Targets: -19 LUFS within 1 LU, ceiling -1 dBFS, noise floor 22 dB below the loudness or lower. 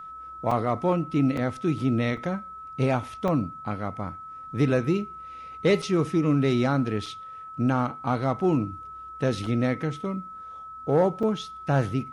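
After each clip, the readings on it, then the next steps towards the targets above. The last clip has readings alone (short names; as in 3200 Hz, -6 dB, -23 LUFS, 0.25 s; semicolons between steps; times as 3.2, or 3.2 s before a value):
dropouts 8; longest dropout 3.9 ms; steady tone 1300 Hz; tone level -38 dBFS; loudness -26.5 LUFS; peak -11.5 dBFS; loudness target -19.0 LUFS
-> interpolate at 0.51/1.37/2.17/3.28/5.82/7.06/9.46/11.23, 3.9 ms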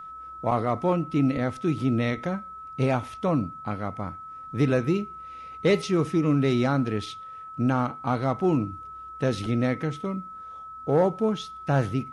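dropouts 0; steady tone 1300 Hz; tone level -38 dBFS
-> notch 1300 Hz, Q 30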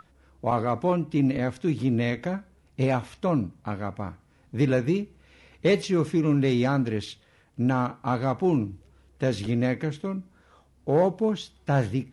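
steady tone none; loudness -26.5 LUFS; peak -11.5 dBFS; loudness target -19.0 LUFS
-> gain +7.5 dB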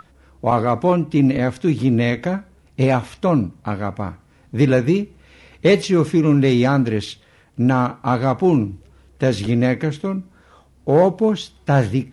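loudness -19.0 LUFS; peak -4.0 dBFS; noise floor -53 dBFS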